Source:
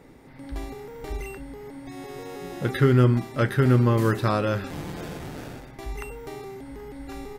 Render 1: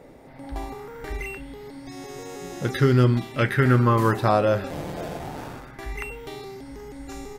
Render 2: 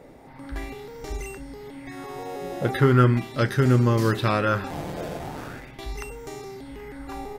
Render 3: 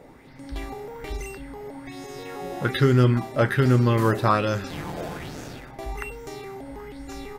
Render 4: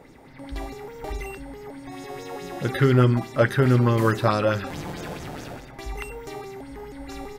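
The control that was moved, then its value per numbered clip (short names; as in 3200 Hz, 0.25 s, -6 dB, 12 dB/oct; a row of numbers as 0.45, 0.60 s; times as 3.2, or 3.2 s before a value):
LFO bell, rate: 0.21, 0.4, 1.2, 4.7 Hz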